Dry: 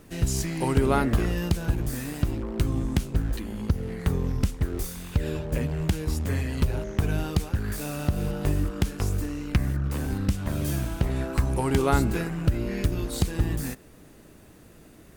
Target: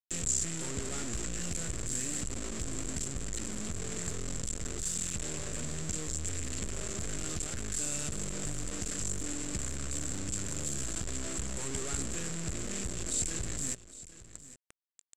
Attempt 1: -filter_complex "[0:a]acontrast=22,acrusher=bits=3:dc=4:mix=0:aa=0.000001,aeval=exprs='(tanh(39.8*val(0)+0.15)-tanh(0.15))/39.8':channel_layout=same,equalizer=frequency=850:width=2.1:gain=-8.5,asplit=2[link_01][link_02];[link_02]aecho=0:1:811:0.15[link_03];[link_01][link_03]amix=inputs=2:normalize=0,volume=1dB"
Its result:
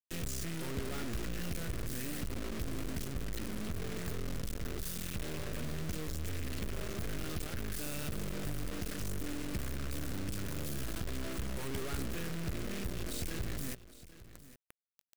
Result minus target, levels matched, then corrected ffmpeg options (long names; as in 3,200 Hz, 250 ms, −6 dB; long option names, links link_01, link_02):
8,000 Hz band −9.0 dB
-filter_complex "[0:a]acontrast=22,acrusher=bits=3:dc=4:mix=0:aa=0.000001,aeval=exprs='(tanh(39.8*val(0)+0.15)-tanh(0.15))/39.8':channel_layout=same,lowpass=frequency=7500:width_type=q:width=13,equalizer=frequency=850:width=2.1:gain=-8.5,asplit=2[link_01][link_02];[link_02]aecho=0:1:811:0.15[link_03];[link_01][link_03]amix=inputs=2:normalize=0,volume=1dB"